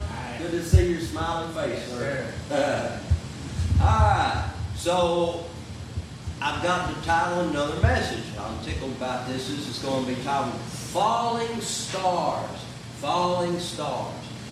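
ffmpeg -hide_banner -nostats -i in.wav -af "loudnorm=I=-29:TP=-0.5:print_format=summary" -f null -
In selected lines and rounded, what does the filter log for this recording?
Input Integrated:    -26.4 LUFS
Input True Peak:      -5.3 dBTP
Input LRA:             3.0 LU
Input Threshold:     -36.6 LUFS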